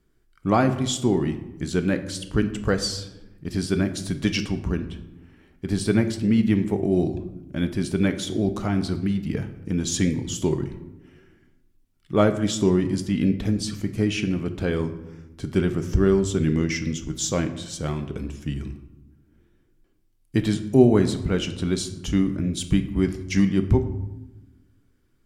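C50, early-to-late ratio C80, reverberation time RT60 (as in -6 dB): 11.5 dB, 14.0 dB, 0.95 s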